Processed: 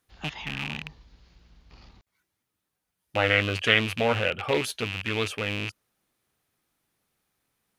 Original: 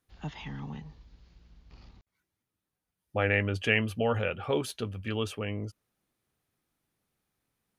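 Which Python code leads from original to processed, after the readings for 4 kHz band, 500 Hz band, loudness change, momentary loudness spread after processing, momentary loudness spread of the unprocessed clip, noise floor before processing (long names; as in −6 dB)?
+10.0 dB, +3.0 dB, +4.5 dB, 13 LU, 15 LU, below −85 dBFS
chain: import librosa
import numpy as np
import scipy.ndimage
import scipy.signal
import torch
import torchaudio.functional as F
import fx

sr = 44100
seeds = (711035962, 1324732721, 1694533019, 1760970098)

y = fx.rattle_buzz(x, sr, strikes_db=-40.0, level_db=-25.0)
y = fx.low_shelf(y, sr, hz=410.0, db=-6.0)
y = fx.doppler_dist(y, sr, depth_ms=0.27)
y = y * 10.0 ** (6.0 / 20.0)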